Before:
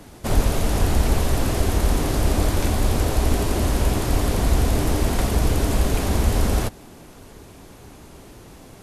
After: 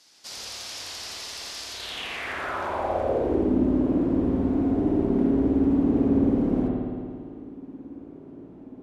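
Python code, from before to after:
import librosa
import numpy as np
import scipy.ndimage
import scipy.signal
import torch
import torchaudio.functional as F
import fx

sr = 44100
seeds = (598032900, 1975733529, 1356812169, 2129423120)

y = fx.rev_spring(x, sr, rt60_s=2.1, pass_ms=(55,), chirp_ms=70, drr_db=-4.0)
y = fx.filter_sweep_bandpass(y, sr, from_hz=5000.0, to_hz=280.0, start_s=1.7, end_s=3.53, q=3.0)
y = y * 10.0 ** (3.0 / 20.0)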